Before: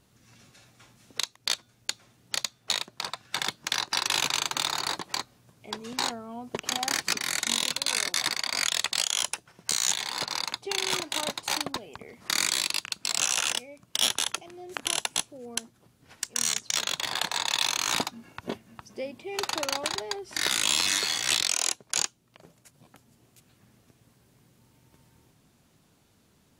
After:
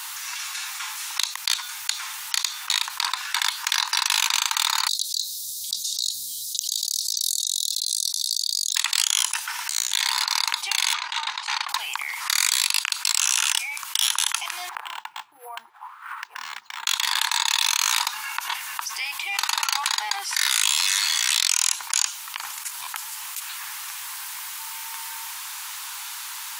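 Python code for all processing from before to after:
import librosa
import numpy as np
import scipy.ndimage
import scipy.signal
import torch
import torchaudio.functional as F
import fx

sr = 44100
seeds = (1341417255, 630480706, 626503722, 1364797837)

y = fx.chain(x, sr, fx.cheby1_bandstop(low_hz=210.0, high_hz=3800.0, order=5),
    fx.over_compress(threshold_db=-40.0, ratio=-1.0), at=(4.88, 8.76))
y = fx.chain(y, sr, fx.notch(hz=1100.0, q=13.0),
    fx.over_compress(threshold_db=-35.0, ratio=-0.5), at=(9.32, 10.11))
y = fx.chain(y, sr, fx.level_steps(step_db=15),
    fx.tube_stage(drive_db=24.0, bias=0.2),
    fx.air_absorb(metres=140.0), at=(10.93, 11.69))
y = fx.chain(y, sr, fx.auto_wah(base_hz=250.0, top_hz=1500.0, q=5.2, full_db=-31.0, direction='down'),
    fx.air_absorb(metres=83.0),
    fx.resample_linear(factor=4), at=(14.69, 16.87))
y = scipy.signal.sosfilt(scipy.signal.ellip(4, 1.0, 40, 900.0, 'highpass', fs=sr, output='sos'), y)
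y = fx.high_shelf(y, sr, hz=11000.0, db=9.0)
y = fx.env_flatten(y, sr, amount_pct=70)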